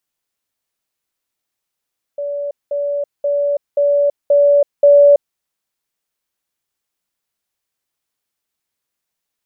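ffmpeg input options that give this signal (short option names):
-f lavfi -i "aevalsrc='pow(10,(-19.5+3*floor(t/0.53))/20)*sin(2*PI*574*t)*clip(min(mod(t,0.53),0.33-mod(t,0.53))/0.005,0,1)':d=3.18:s=44100"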